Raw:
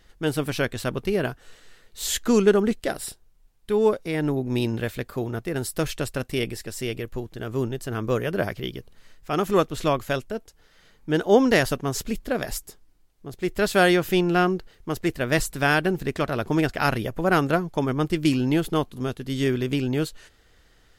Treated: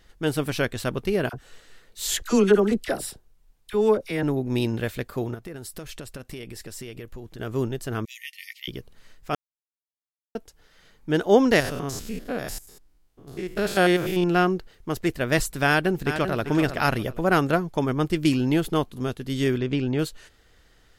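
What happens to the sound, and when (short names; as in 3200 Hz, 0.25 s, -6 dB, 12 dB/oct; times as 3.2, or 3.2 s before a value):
1.29–4.23 dispersion lows, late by 45 ms, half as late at 1100 Hz
5.34–7.39 compressor 5:1, threshold -34 dBFS
8.05–8.68 brick-wall FIR high-pass 1800 Hz
9.35–10.35 mute
11.6–14.24 stepped spectrum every 0.1 s
15.67–16.41 echo throw 0.39 s, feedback 25%, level -9 dB
19.58–19.99 air absorption 120 m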